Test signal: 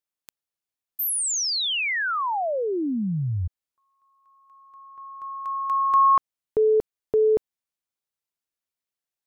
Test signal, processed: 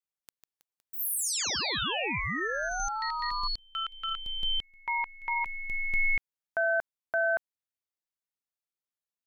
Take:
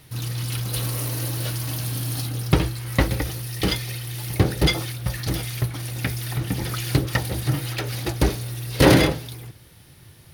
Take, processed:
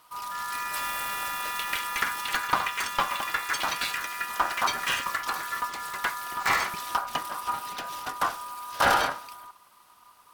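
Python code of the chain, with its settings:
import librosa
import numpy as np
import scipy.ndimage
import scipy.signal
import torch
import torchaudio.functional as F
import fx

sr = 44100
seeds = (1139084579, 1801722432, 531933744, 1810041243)

y = x * np.sin(2.0 * np.pi * 1100.0 * np.arange(len(x)) / sr)
y = fx.echo_pitch(y, sr, ms=233, semitones=6, count=3, db_per_echo=-3.0)
y = y * librosa.db_to_amplitude(-5.0)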